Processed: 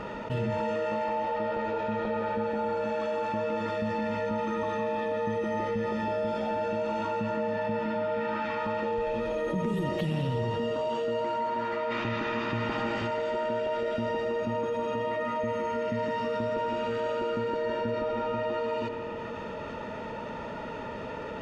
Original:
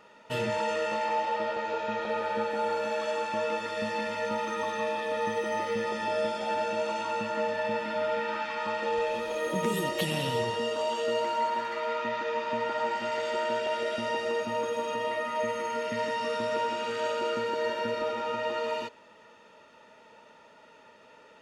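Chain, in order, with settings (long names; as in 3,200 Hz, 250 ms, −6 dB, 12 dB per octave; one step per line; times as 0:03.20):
0:11.90–0:13.06: ceiling on every frequency bin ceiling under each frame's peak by 17 dB
RIAA equalisation playback
on a send: delay with a low-pass on its return 82 ms, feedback 79%, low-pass 3,200 Hz, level −20.5 dB
on the sum: envelope flattener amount 70%
level −7 dB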